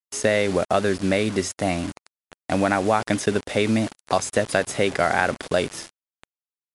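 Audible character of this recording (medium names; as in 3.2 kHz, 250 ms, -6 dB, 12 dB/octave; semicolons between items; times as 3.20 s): a quantiser's noise floor 6-bit, dither none; MP3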